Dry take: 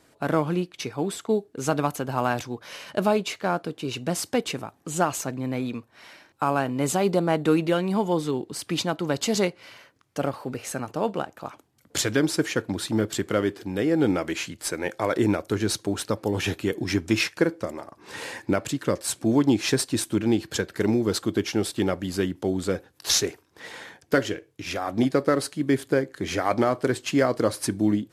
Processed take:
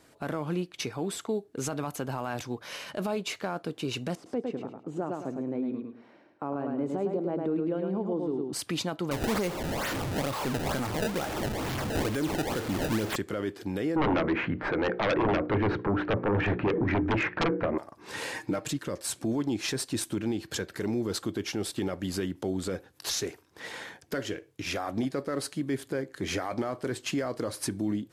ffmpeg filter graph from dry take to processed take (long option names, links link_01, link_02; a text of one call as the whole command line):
ffmpeg -i in.wav -filter_complex "[0:a]asettb=1/sr,asplit=3[link_01][link_02][link_03];[link_01]atrim=end=4.154[link_04];[link_02]atrim=start=4.15:end=8.53,asetpts=PTS-STARTPTS,afade=type=in:duration=0.004:curve=qsin,afade=type=out:start_time=4.376:duration=0.004:curve=qsin,bandpass=frequency=340:width_type=q:width=1.1,aecho=1:1:106|212|318|424:0.562|0.152|0.041|0.0111,atrim=end_sample=193158[link_05];[link_03]atrim=start=8.526[link_06];[link_04][link_05]acrossfade=duration=0.004:curve1=hsin:curve2=qsin[link_07];[link_07][link_06]acrossfade=duration=0.004:curve1=qsin:curve2=hsin,asettb=1/sr,asplit=3[link_08][link_09][link_10];[link_08]atrim=end=9.114[link_11];[link_09]atrim=start=9.11:end=13.16,asetpts=PTS-STARTPTS,afade=type=in:duration=0.004:curve=qsin,afade=type=out:start_time=4.046:duration=0.004:curve=qsin,aeval=exprs='val(0)+0.5*0.0531*sgn(val(0))':channel_layout=same,acrusher=samples=23:mix=1:aa=0.000001:lfo=1:lforange=36.8:lforate=2.2[link_12];[link_10]atrim=start=13.156[link_13];[link_11][link_12]acrossfade=duration=0.004:curve1=hsin:curve2=qsin[link_14];[link_14][link_13]acrossfade=duration=0.004:curve1=qsin:curve2=hsin,asettb=1/sr,asplit=3[link_15][link_16][link_17];[link_15]atrim=end=13.964[link_18];[link_16]atrim=start=13.96:end=17.78,asetpts=PTS-STARTPTS,afade=type=in:duration=0.004:curve=qsin,afade=type=out:start_time=3.816:duration=0.004:curve=qsin,lowpass=frequency=1900:width=0.5412,lowpass=frequency=1900:width=1.3066,bandreject=frequency=60:width_type=h:width=6,bandreject=frequency=120:width_type=h:width=6,bandreject=frequency=180:width_type=h:width=6,bandreject=frequency=240:width_type=h:width=6,bandreject=frequency=300:width_type=h:width=6,bandreject=frequency=360:width_type=h:width=6,bandreject=frequency=420:width_type=h:width=6,bandreject=frequency=480:width_type=h:width=6,aeval=exprs='0.376*sin(PI/2*5.01*val(0)/0.376)':channel_layout=same[link_19];[link_17]atrim=start=17.776[link_20];[link_18][link_19]acrossfade=duration=0.004:curve1=hsin:curve2=qsin[link_21];[link_21][link_20]acrossfade=duration=0.004:curve1=qsin:curve2=hsin,asettb=1/sr,asplit=3[link_22][link_23][link_24];[link_22]atrim=end=18.344[link_25];[link_23]atrim=start=18.34:end=18.79,asetpts=PTS-STARTPTS,afade=type=in:duration=0.004:curve=qsin,afade=type=out:start_time=0.446:duration=0.004:curve=qsin,aecho=1:1:6.5:0.63,atrim=end_sample=19845,asoftclip=type=hard:threshold=-12dB[link_26];[link_24]atrim=start=18.786[link_27];[link_25][link_26]acrossfade=duration=0.004:curve1=hsin:curve2=qsin[link_28];[link_28][link_27]acrossfade=duration=0.004:curve1=qsin:curve2=hsin,acompressor=threshold=-29dB:ratio=2,alimiter=limit=-21.5dB:level=0:latency=1:release=11" out.wav